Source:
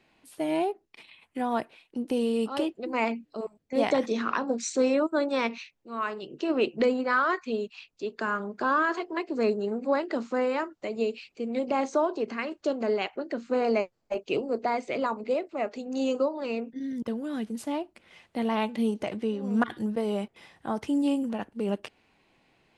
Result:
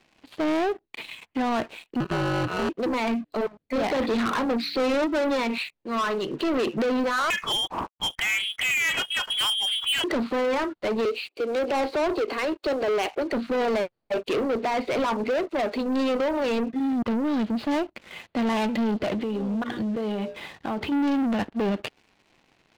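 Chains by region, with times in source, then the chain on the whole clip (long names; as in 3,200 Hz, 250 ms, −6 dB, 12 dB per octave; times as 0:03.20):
0:02.00–0:02.69: samples sorted by size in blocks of 32 samples + ring modulation 90 Hz + high-frequency loss of the air 370 metres
0:03.98–0:05.34: hum removal 95.78 Hz, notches 4 + gain into a clipping stage and back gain 20.5 dB
0:07.30–0:10.04: downward expander −52 dBFS + spectral tilt +4.5 dB per octave + voice inversion scrambler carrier 3,600 Hz
0:11.05–0:13.33: Butterworth high-pass 290 Hz 48 dB per octave + parametric band 1,600 Hz −5.5 dB 0.96 octaves
0:19.13–0:20.92: mains-hum notches 60/120/180/240/300/360/420/480/540/600 Hz + downward compressor 16 to 1, threshold −35 dBFS
whole clip: Butterworth low-pass 4,700 Hz 96 dB per octave; brickwall limiter −22.5 dBFS; leveller curve on the samples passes 3; level +2 dB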